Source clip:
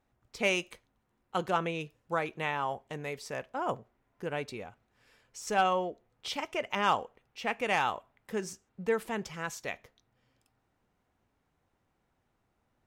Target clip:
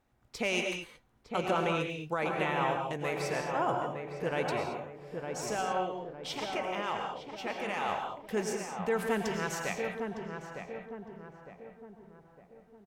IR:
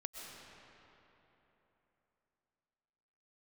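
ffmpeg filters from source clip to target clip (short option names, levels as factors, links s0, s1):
-filter_complex "[0:a]alimiter=limit=0.0668:level=0:latency=1:release=31,asplit=3[s0][s1][s2];[s0]afade=t=out:st=5.45:d=0.02[s3];[s1]flanger=delay=5.4:depth=8.9:regen=89:speed=1.3:shape=triangular,afade=t=in:st=5.45:d=0.02,afade=t=out:st=7.88:d=0.02[s4];[s2]afade=t=in:st=7.88:d=0.02[s5];[s3][s4][s5]amix=inputs=3:normalize=0,asplit=2[s6][s7];[s7]adelay=908,lowpass=f=1300:p=1,volume=0.562,asplit=2[s8][s9];[s9]adelay=908,lowpass=f=1300:p=1,volume=0.48,asplit=2[s10][s11];[s11]adelay=908,lowpass=f=1300:p=1,volume=0.48,asplit=2[s12][s13];[s13]adelay=908,lowpass=f=1300:p=1,volume=0.48,asplit=2[s14][s15];[s15]adelay=908,lowpass=f=1300:p=1,volume=0.48,asplit=2[s16][s17];[s17]adelay=908,lowpass=f=1300:p=1,volume=0.48[s18];[s6][s8][s10][s12][s14][s16][s18]amix=inputs=7:normalize=0[s19];[1:a]atrim=start_sample=2205,afade=t=out:st=0.33:d=0.01,atrim=end_sample=14994,asetrate=52920,aresample=44100[s20];[s19][s20]afir=irnorm=-1:irlink=0,volume=2.66"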